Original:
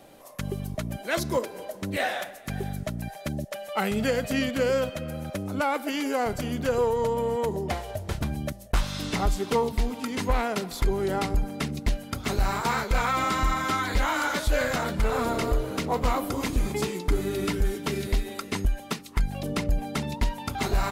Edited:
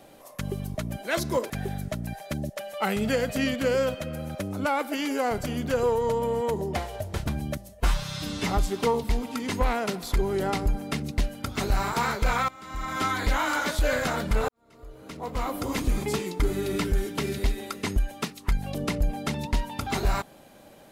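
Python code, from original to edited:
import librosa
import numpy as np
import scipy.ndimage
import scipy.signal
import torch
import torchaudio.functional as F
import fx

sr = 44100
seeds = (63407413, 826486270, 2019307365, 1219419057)

y = fx.edit(x, sr, fx.cut(start_s=1.5, length_s=0.95),
    fx.stretch_span(start_s=8.64, length_s=0.53, factor=1.5),
    fx.fade_in_from(start_s=13.17, length_s=0.55, curve='qua', floor_db=-23.0),
    fx.fade_in_span(start_s=15.17, length_s=1.22, curve='qua'), tone=tone)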